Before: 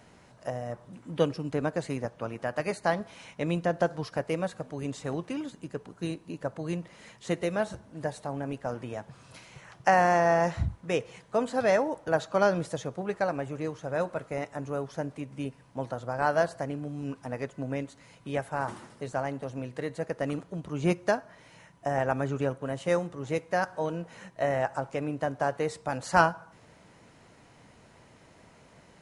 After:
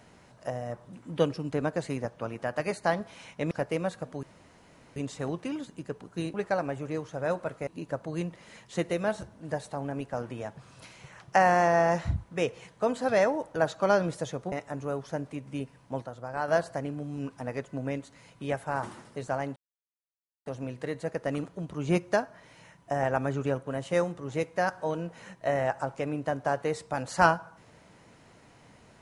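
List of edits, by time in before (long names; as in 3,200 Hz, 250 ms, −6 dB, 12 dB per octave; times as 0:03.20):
0:03.51–0:04.09: remove
0:04.81: splice in room tone 0.73 s
0:13.04–0:14.37: move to 0:06.19
0:15.87–0:16.33: clip gain −5.5 dB
0:19.41: splice in silence 0.90 s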